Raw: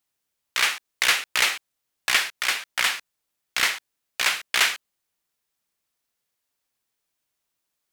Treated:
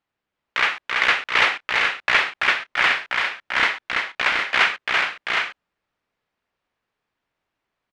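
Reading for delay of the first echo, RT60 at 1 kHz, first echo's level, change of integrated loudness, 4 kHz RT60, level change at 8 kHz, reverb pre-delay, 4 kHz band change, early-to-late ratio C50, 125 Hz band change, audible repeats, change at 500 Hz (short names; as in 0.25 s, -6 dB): 0.334 s, none, -3.5 dB, +2.5 dB, none, -12.5 dB, none, 0.0 dB, none, n/a, 4, +8.5 dB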